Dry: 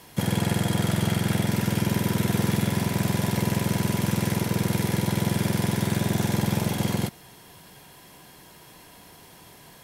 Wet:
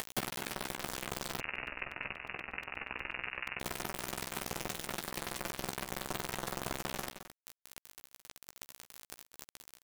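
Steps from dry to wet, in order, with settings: Bessel high-pass 390 Hz, order 2; tilt shelf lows +7 dB, about 730 Hz; upward compressor, threshold -36 dBFS; peak limiter -25.5 dBFS, peak gain reduction 9 dB; compression 10:1, threshold -40 dBFS, peak gain reduction 10.5 dB; bit crusher 6-bit; doubling 15 ms -7 dB; delay 217 ms -11 dB; 1.40–3.60 s: frequency inversion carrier 2.8 kHz; crackling interface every 0.12 s, samples 128, repeat, from 0.35 s; trim +6.5 dB

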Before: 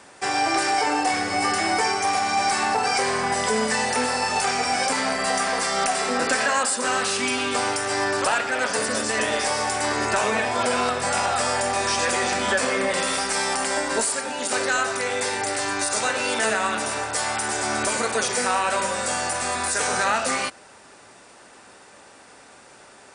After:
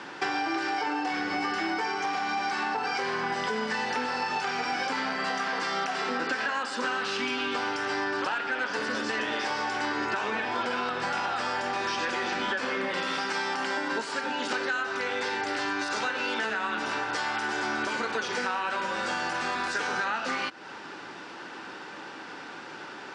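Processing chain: cabinet simulation 140–5200 Hz, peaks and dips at 160 Hz +5 dB, 320 Hz +8 dB, 630 Hz -6 dB, 900 Hz +4 dB, 1.5 kHz +6 dB, 3 kHz +4 dB; compression, threshold -33 dBFS, peak gain reduction 16.5 dB; trim +5 dB

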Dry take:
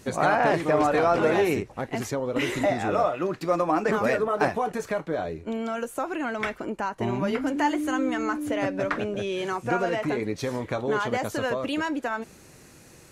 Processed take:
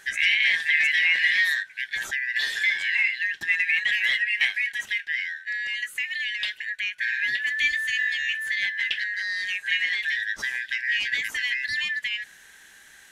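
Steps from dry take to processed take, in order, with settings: four frequency bands reordered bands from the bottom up 4123

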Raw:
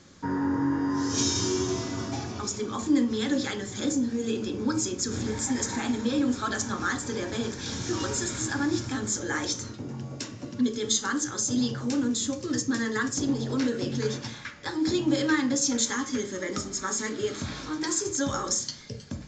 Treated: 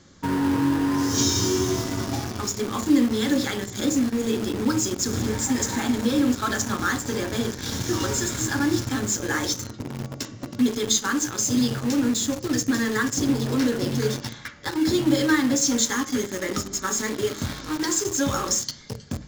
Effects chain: bass shelf 92 Hz +5 dB; band-stop 2.5 kHz, Q 13; in parallel at -5 dB: bit crusher 5-bit

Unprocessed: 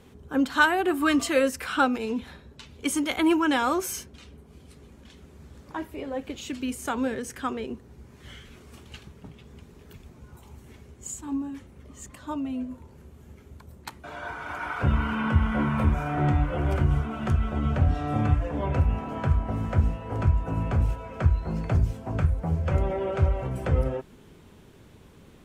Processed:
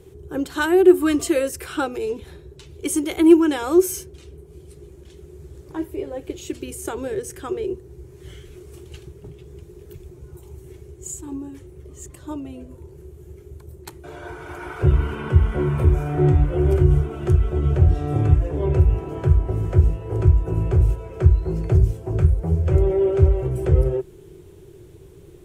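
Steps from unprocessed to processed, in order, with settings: FFT filter 150 Hz 0 dB, 240 Hz -19 dB, 360 Hz +9 dB, 520 Hz -6 dB, 1.1 kHz -12 dB, 4.6 kHz -8 dB, 9.1 kHz -1 dB; trim +7 dB

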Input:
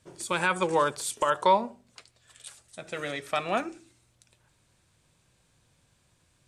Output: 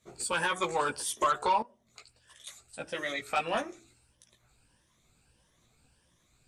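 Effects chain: drifting ripple filter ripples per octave 1.2, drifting +1.6 Hz, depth 10 dB; chorus voices 6, 0.74 Hz, delay 16 ms, depth 2.6 ms; 1.62–2.47 s: compression 5:1, threshold -50 dBFS, peak gain reduction 15 dB; harmonic-percussive split percussive +7 dB; saturation -15 dBFS, distortion -16 dB; trim -3.5 dB

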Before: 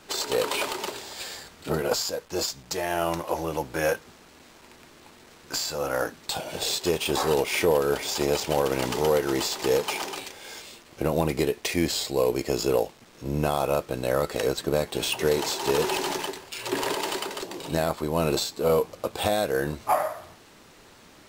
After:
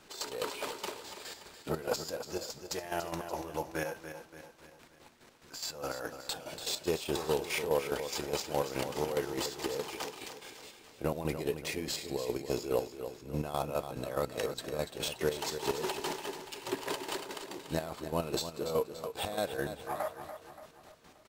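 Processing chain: square tremolo 4.8 Hz, depth 65%, duty 40%; on a send: feedback delay 288 ms, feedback 49%, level -10 dB; on the sum: trim -6.5 dB

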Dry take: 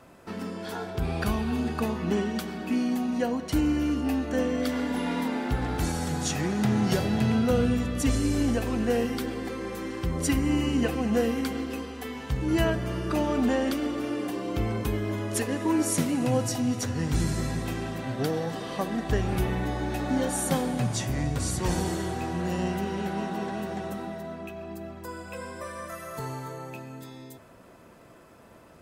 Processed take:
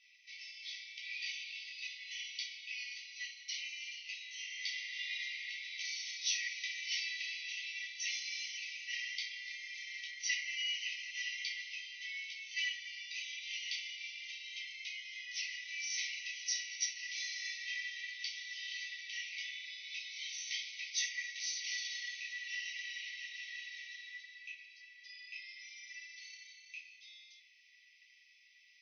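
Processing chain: reverberation RT60 0.45 s, pre-delay 3 ms, DRR -5 dB; FFT band-pass 1.9–6.3 kHz; trim -4.5 dB

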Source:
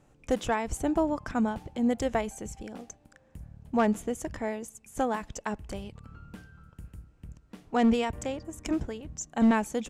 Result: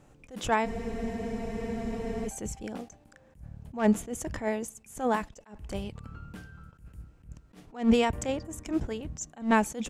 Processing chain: spectral freeze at 0.67 s, 1.59 s; attacks held to a fixed rise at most 180 dB/s; trim +4 dB

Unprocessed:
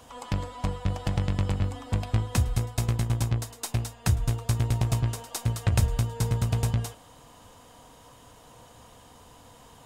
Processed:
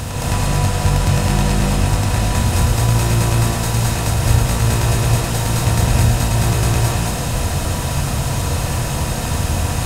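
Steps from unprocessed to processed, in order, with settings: spectral levelling over time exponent 0.2; gated-style reverb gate 260 ms rising, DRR -5 dB; trim -1 dB

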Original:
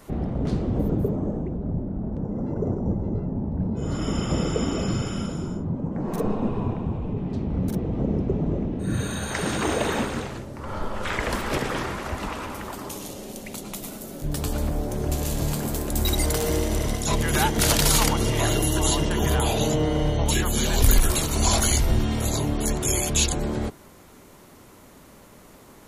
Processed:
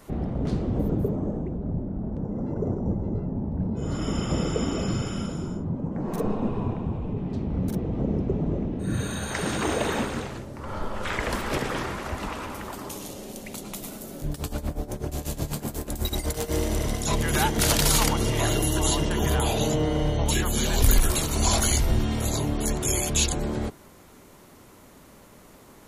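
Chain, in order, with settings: 14.31–16.54 s: tremolo 8.1 Hz, depth 81%; trim -1.5 dB

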